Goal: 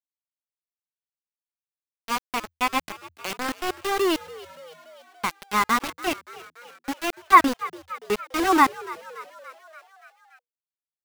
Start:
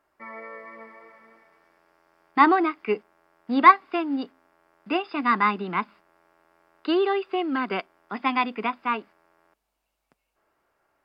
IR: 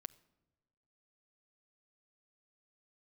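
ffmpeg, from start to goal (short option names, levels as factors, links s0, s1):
-filter_complex "[0:a]areverse,aeval=exprs='val(0)*gte(abs(val(0)),0.075)':c=same,asplit=7[s0][s1][s2][s3][s4][s5][s6];[s1]adelay=287,afreqshift=80,volume=0.119[s7];[s2]adelay=574,afreqshift=160,volume=0.075[s8];[s3]adelay=861,afreqshift=240,volume=0.0473[s9];[s4]adelay=1148,afreqshift=320,volume=0.0299[s10];[s5]adelay=1435,afreqshift=400,volume=0.0186[s11];[s6]adelay=1722,afreqshift=480,volume=0.0117[s12];[s0][s7][s8][s9][s10][s11][s12]amix=inputs=7:normalize=0"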